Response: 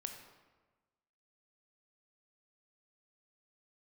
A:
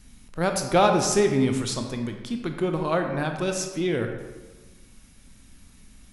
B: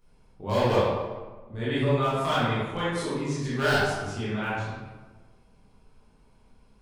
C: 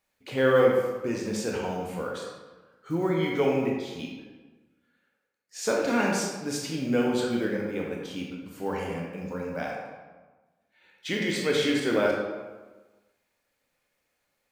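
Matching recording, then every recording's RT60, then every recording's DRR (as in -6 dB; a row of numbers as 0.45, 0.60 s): A; 1.3, 1.3, 1.3 s; 4.5, -11.0, -2.0 dB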